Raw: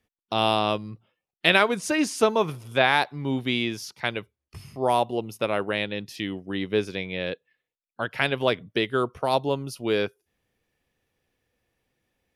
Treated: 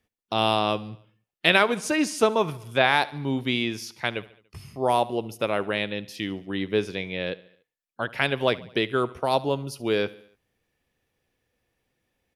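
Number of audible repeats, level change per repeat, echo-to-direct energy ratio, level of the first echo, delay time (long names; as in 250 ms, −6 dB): 3, −5.5 dB, −18.5 dB, −20.0 dB, 72 ms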